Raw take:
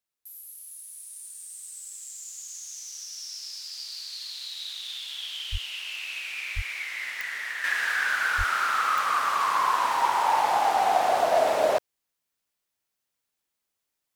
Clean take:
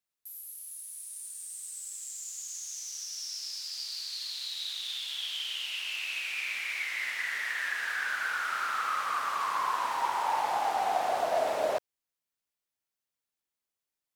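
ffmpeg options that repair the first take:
ffmpeg -i in.wav -filter_complex "[0:a]adeclick=threshold=4,asplit=3[link_01][link_02][link_03];[link_01]afade=type=out:start_time=5.51:duration=0.02[link_04];[link_02]highpass=frequency=140:width=0.5412,highpass=frequency=140:width=1.3066,afade=type=in:start_time=5.51:duration=0.02,afade=type=out:start_time=5.63:duration=0.02[link_05];[link_03]afade=type=in:start_time=5.63:duration=0.02[link_06];[link_04][link_05][link_06]amix=inputs=3:normalize=0,asplit=3[link_07][link_08][link_09];[link_07]afade=type=out:start_time=6.55:duration=0.02[link_10];[link_08]highpass=frequency=140:width=0.5412,highpass=frequency=140:width=1.3066,afade=type=in:start_time=6.55:duration=0.02,afade=type=out:start_time=6.67:duration=0.02[link_11];[link_09]afade=type=in:start_time=6.67:duration=0.02[link_12];[link_10][link_11][link_12]amix=inputs=3:normalize=0,asplit=3[link_13][link_14][link_15];[link_13]afade=type=out:start_time=8.37:duration=0.02[link_16];[link_14]highpass=frequency=140:width=0.5412,highpass=frequency=140:width=1.3066,afade=type=in:start_time=8.37:duration=0.02,afade=type=out:start_time=8.49:duration=0.02[link_17];[link_15]afade=type=in:start_time=8.49:duration=0.02[link_18];[link_16][link_17][link_18]amix=inputs=3:normalize=0,asetnsamples=nb_out_samples=441:pad=0,asendcmd='7.64 volume volume -6.5dB',volume=0dB" out.wav

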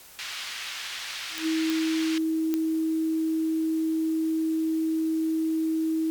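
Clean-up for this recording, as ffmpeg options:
ffmpeg -i in.wav -af "adeclick=threshold=4,bandreject=frequency=50.6:width_type=h:width=4,bandreject=frequency=101.2:width_type=h:width=4,bandreject=frequency=151.8:width_type=h:width=4,bandreject=frequency=202.4:width_type=h:width=4,bandreject=frequency=253:width_type=h:width=4,bandreject=frequency=320:width=30,afwtdn=0.0035" out.wav

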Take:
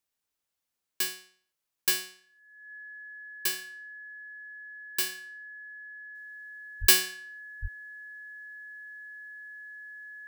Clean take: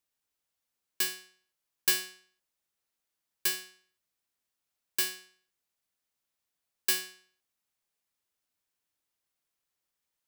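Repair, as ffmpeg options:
ffmpeg -i in.wav -filter_complex "[0:a]bandreject=frequency=1700:width=30,asplit=3[link_01][link_02][link_03];[link_01]afade=type=out:start_time=6.8:duration=0.02[link_04];[link_02]highpass=frequency=140:width=0.5412,highpass=frequency=140:width=1.3066,afade=type=in:start_time=6.8:duration=0.02,afade=type=out:start_time=6.92:duration=0.02[link_05];[link_03]afade=type=in:start_time=6.92:duration=0.02[link_06];[link_04][link_05][link_06]amix=inputs=3:normalize=0,asplit=3[link_07][link_08][link_09];[link_07]afade=type=out:start_time=7.61:duration=0.02[link_10];[link_08]highpass=frequency=140:width=0.5412,highpass=frequency=140:width=1.3066,afade=type=in:start_time=7.61:duration=0.02,afade=type=out:start_time=7.73:duration=0.02[link_11];[link_09]afade=type=in:start_time=7.73:duration=0.02[link_12];[link_10][link_11][link_12]amix=inputs=3:normalize=0,asetnsamples=nb_out_samples=441:pad=0,asendcmd='6.15 volume volume -8.5dB',volume=0dB" out.wav

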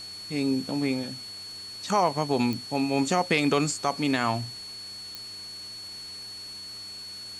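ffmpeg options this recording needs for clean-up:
ffmpeg -i in.wav -af "adeclick=threshold=4,bandreject=frequency=102:width_type=h:width=4,bandreject=frequency=204:width_type=h:width=4,bandreject=frequency=306:width_type=h:width=4,bandreject=frequency=408:width_type=h:width=4,bandreject=frequency=4400:width=30,afwtdn=0.0045" out.wav

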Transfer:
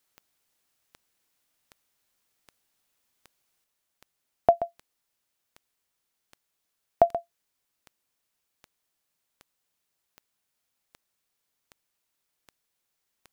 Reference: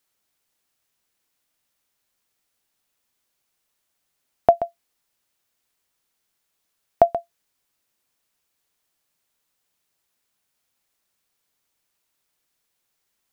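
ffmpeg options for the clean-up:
ffmpeg -i in.wav -af "adeclick=threshold=4,asetnsamples=nb_out_samples=441:pad=0,asendcmd='3.64 volume volume 4.5dB',volume=0dB" out.wav

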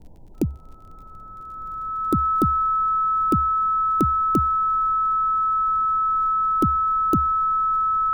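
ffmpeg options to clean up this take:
ffmpeg -i in.wav -af "adeclick=threshold=4,bandreject=frequency=1300:width=30,afftdn=noise_reduction=29:noise_floor=-41" out.wav

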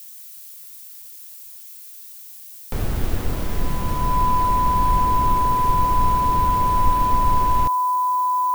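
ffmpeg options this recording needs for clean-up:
ffmpeg -i in.wav -af "bandreject=frequency=1000:width=30,afftdn=noise_reduction=25:noise_floor=-40" out.wav

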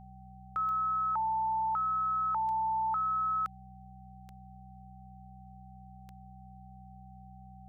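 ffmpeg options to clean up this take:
ffmpeg -i in.wav -af "adeclick=threshold=4,bandreject=frequency=62.9:width_type=h:width=4,bandreject=frequency=125.8:width_type=h:width=4,bandreject=frequency=188.7:width_type=h:width=4,bandreject=frequency=770:width=30,agate=range=-21dB:threshold=-43dB" out.wav

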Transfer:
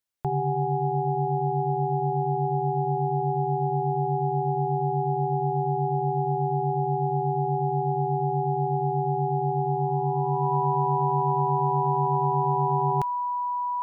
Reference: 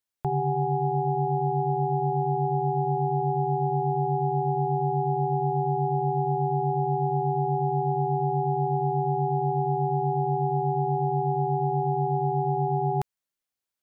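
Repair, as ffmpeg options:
ffmpeg -i in.wav -af "bandreject=frequency=980:width=30" out.wav

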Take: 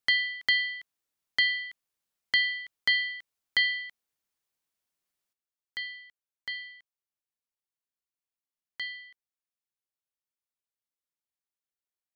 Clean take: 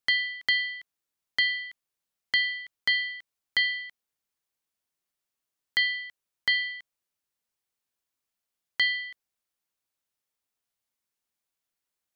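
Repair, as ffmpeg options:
ffmpeg -i in.wav -af "asetnsamples=nb_out_samples=441:pad=0,asendcmd='5.33 volume volume 11.5dB',volume=0dB" out.wav

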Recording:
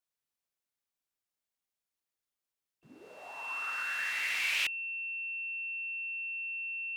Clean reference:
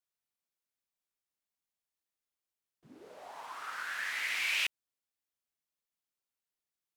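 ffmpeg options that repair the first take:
ffmpeg -i in.wav -af "bandreject=frequency=2700:width=30" out.wav

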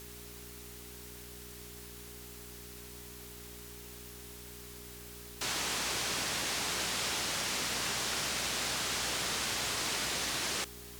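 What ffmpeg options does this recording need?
ffmpeg -i in.wav -af "adeclick=threshold=4,bandreject=frequency=60.6:width_type=h:width=4,bandreject=frequency=121.2:width_type=h:width=4,bandreject=frequency=181.8:width_type=h:width=4,bandreject=frequency=242.4:width_type=h:width=4,bandreject=frequency=303:width_type=h:width=4,bandreject=frequency=363.6:width_type=h:width=4,bandreject=frequency=410:width=30,afwtdn=0.0032" out.wav

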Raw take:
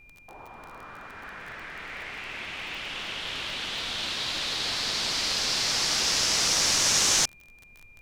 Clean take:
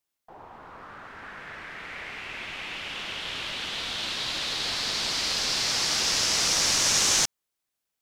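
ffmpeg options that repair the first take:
ffmpeg -i in.wav -af "adeclick=threshold=4,bandreject=frequency=2400:width=30,agate=range=-21dB:threshold=-44dB" out.wav

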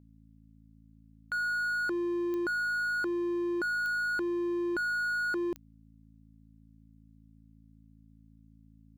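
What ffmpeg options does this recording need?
ffmpeg -i in.wav -af "adeclick=threshold=4,bandreject=frequency=54.7:width_type=h:width=4,bandreject=frequency=109.4:width_type=h:width=4,bandreject=frequency=164.1:width_type=h:width=4,bandreject=frequency=218.8:width_type=h:width=4,bandreject=frequency=273.5:width_type=h:width=4" out.wav

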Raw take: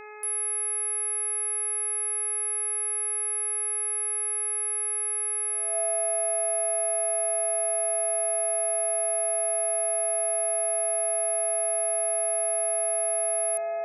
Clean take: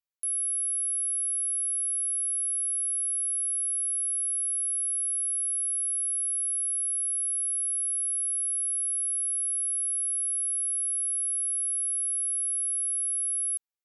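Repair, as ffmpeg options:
ffmpeg -i in.wav -af "bandreject=frequency=423.1:width_type=h:width=4,bandreject=frequency=846.2:width_type=h:width=4,bandreject=frequency=1269.3:width_type=h:width=4,bandreject=frequency=1692.4:width_type=h:width=4,bandreject=frequency=2115.5:width_type=h:width=4,bandreject=frequency=2538.6:width_type=h:width=4,bandreject=frequency=670:width=30" out.wav

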